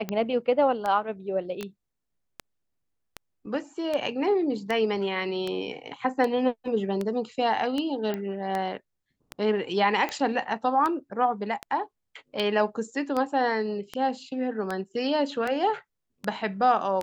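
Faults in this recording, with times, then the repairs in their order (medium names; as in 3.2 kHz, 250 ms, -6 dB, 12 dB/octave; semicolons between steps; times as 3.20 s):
tick 78 rpm -16 dBFS
1.61 s: pop -21 dBFS
8.14 s: pop -18 dBFS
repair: de-click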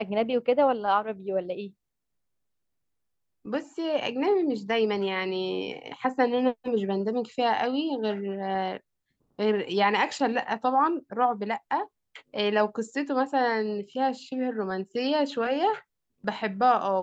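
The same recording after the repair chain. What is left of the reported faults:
nothing left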